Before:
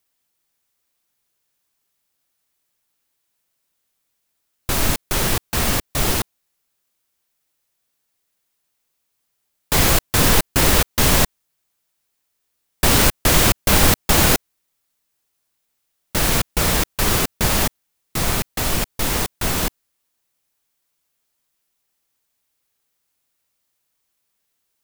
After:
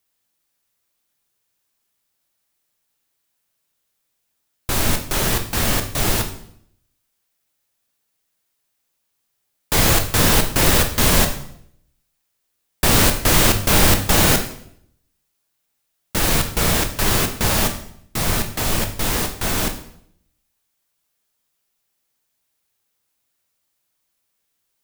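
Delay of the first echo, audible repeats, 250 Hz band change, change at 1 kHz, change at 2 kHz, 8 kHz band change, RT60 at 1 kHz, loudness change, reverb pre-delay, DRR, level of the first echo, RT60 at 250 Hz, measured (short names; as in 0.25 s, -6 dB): none, none, +0.5 dB, 0.0 dB, 0.0 dB, 0.0 dB, 0.65 s, 0.0 dB, 9 ms, 5.0 dB, none, 0.80 s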